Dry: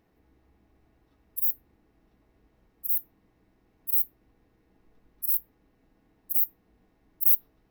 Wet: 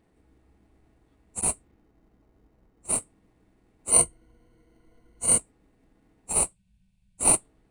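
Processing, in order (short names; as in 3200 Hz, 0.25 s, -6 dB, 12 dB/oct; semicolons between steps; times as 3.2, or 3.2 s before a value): nonlinear frequency compression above 2900 Hz 1.5:1; 1.41–2.97 low-pass opened by the level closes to 1500 Hz, open at -25 dBFS; 6.44–7.24 Chebyshev band-stop 200–2400 Hz, order 5; in parallel at -8 dB: sample-and-hold 26×; 3.9–5.38 on the sum: ripple EQ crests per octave 1.9, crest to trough 14 dB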